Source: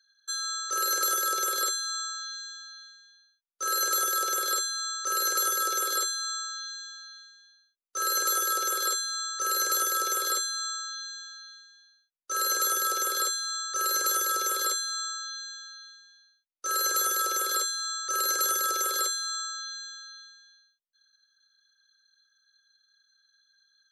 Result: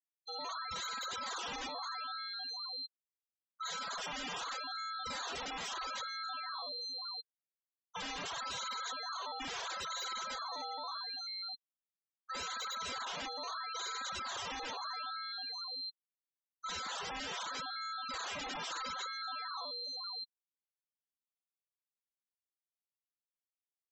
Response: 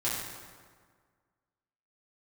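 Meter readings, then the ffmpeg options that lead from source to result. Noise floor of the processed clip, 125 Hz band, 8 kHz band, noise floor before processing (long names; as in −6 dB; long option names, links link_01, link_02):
below −85 dBFS, can't be measured, −22.0 dB, −73 dBFS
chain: -filter_complex "[0:a]afftfilt=real='re*gte(hypot(re,im),0.0398)':imag='im*gte(hypot(re,im),0.0398)':win_size=1024:overlap=0.75,acrossover=split=3500[link_01][link_02];[link_01]acrusher=samples=14:mix=1:aa=0.000001:lfo=1:lforange=14:lforate=0.77[link_03];[link_03][link_02]amix=inputs=2:normalize=0,acrossover=split=2800[link_04][link_05];[link_05]acompressor=threshold=-43dB:ratio=4:attack=1:release=60[link_06];[link_04][link_06]amix=inputs=2:normalize=0,highpass=frequency=270:width=0.5412,highpass=frequency=270:width=1.3066,equalizer=frequency=410:width_type=q:width=4:gain=-7,equalizer=frequency=650:width_type=q:width=4:gain=4,equalizer=frequency=1100:width_type=q:width=4:gain=10,equalizer=frequency=1700:width_type=q:width=4:gain=-4,equalizer=frequency=3800:width_type=q:width=4:gain=9,lowpass=frequency=4600:width=0.5412,lowpass=frequency=4600:width=1.3066,aresample=16000,aeval=exprs='(mod(23.7*val(0)+1,2)-1)/23.7':channel_layout=same,aresample=44100,lowshelf=frequency=410:gain=-4.5,asplit=2[link_07][link_08];[link_08]adelay=169,lowpass=frequency=1600:poles=1,volume=-21dB,asplit=2[link_09][link_10];[link_10]adelay=169,lowpass=frequency=1600:poles=1,volume=0.37,asplit=2[link_11][link_12];[link_12]adelay=169,lowpass=frequency=1600:poles=1,volume=0.37[link_13];[link_07][link_09][link_11][link_13]amix=inputs=4:normalize=0,asoftclip=type=tanh:threshold=-38.5dB,alimiter=level_in=24dB:limit=-24dB:level=0:latency=1,volume=-24dB,afftfilt=real='re*gte(hypot(re,im),0.00355)':imag='im*gte(hypot(re,im),0.00355)':win_size=1024:overlap=0.75,volume=10.5dB"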